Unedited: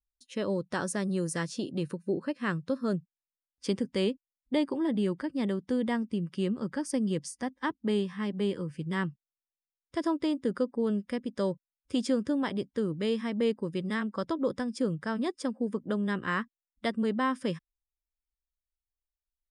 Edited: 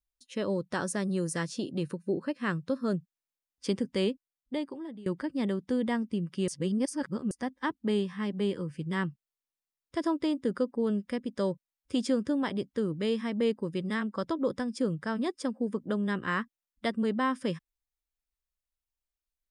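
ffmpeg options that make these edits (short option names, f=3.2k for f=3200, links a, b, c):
-filter_complex "[0:a]asplit=4[a][b][c][d];[a]atrim=end=5.06,asetpts=PTS-STARTPTS,afade=t=out:st=4.04:d=1.02:silence=0.0891251[e];[b]atrim=start=5.06:end=6.482,asetpts=PTS-STARTPTS,afade=t=in:d=0.004:c=hsin:silence=0.0891251[f];[c]atrim=start=6.478:end=7.312,asetpts=PTS-STARTPTS,areverse[g];[d]atrim=start=7.308[h];[e][f]concat=n=2:v=0:a=1[i];[i][g]acrossfade=d=0.004:c1=hsin:c2=hsin[j];[j][h]acrossfade=d=0.004:c1=hsin:c2=hsin"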